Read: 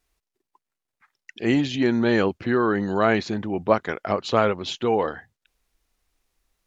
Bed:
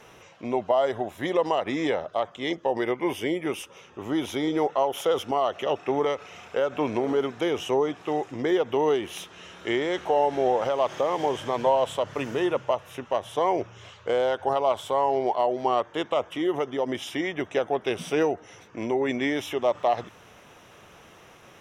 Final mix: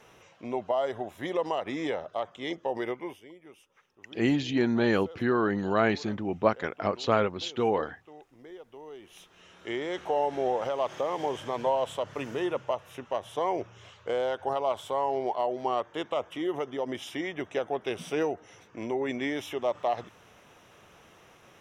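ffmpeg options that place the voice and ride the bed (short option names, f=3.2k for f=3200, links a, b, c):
-filter_complex "[0:a]adelay=2750,volume=-4.5dB[a];[1:a]volume=12.5dB,afade=t=out:st=2.87:d=0.34:silence=0.133352,afade=t=in:st=8.9:d=1.16:silence=0.125893[b];[a][b]amix=inputs=2:normalize=0"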